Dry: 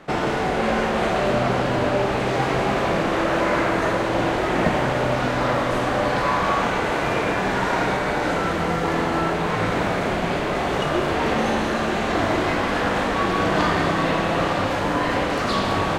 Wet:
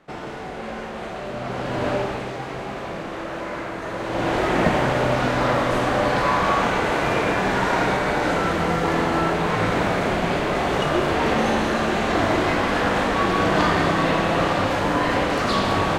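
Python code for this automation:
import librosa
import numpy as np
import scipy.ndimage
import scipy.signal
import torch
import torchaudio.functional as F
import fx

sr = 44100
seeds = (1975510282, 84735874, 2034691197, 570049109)

y = fx.gain(x, sr, db=fx.line((1.32, -10.5), (1.91, -1.5), (2.39, -9.5), (3.84, -9.5), (4.37, 1.0)))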